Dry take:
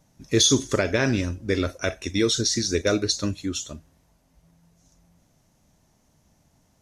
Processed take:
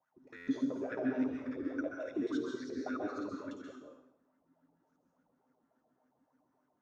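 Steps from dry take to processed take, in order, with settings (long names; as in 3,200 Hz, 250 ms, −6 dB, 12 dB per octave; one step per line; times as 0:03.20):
reversed piece by piece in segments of 54 ms
brickwall limiter −16 dBFS, peak gain reduction 9 dB
tuned comb filter 130 Hz, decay 0.39 s, harmonics all, mix 70%
LFO wah 3.5 Hz 260–1,500 Hz, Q 8.4
dense smooth reverb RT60 0.71 s, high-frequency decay 0.85×, pre-delay 120 ms, DRR 0 dB
buffer that repeats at 0:00.36, samples 512, times 9
level +8.5 dB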